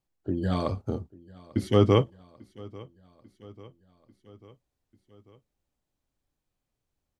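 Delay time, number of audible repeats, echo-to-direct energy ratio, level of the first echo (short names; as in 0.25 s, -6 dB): 0.843 s, 3, -20.5 dB, -22.5 dB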